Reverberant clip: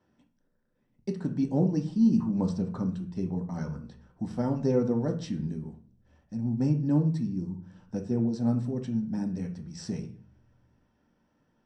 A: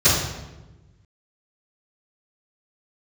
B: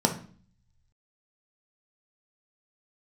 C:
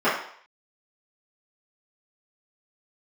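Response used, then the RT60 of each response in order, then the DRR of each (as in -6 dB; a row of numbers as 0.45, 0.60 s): B; 1.1, 0.45, 0.60 s; -19.0, 3.0, -14.0 dB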